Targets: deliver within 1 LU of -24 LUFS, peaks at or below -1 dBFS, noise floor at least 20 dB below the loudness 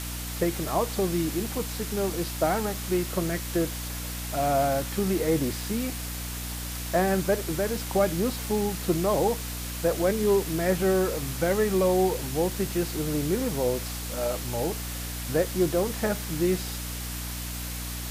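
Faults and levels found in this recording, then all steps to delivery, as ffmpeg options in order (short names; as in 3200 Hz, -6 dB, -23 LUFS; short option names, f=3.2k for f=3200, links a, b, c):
hum 60 Hz; harmonics up to 300 Hz; hum level -34 dBFS; noise floor -34 dBFS; noise floor target -48 dBFS; loudness -27.5 LUFS; peak -11.5 dBFS; loudness target -24.0 LUFS
-> -af "bandreject=f=60:t=h:w=4,bandreject=f=120:t=h:w=4,bandreject=f=180:t=h:w=4,bandreject=f=240:t=h:w=4,bandreject=f=300:t=h:w=4"
-af "afftdn=nr=14:nf=-34"
-af "volume=3.5dB"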